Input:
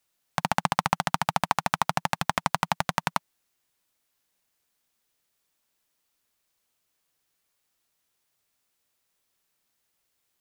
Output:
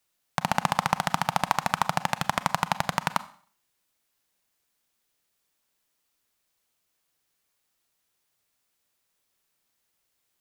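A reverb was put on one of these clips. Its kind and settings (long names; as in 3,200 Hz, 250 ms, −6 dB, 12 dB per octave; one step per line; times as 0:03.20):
four-comb reverb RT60 0.48 s, combs from 30 ms, DRR 14.5 dB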